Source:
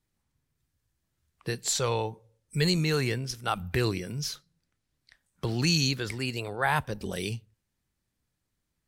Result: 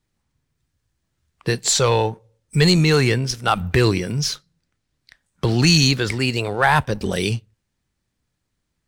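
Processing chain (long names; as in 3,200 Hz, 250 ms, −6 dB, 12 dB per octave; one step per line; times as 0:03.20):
parametric band 13,000 Hz −10 dB 0.56 octaves
leveller curve on the samples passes 1
level +7.5 dB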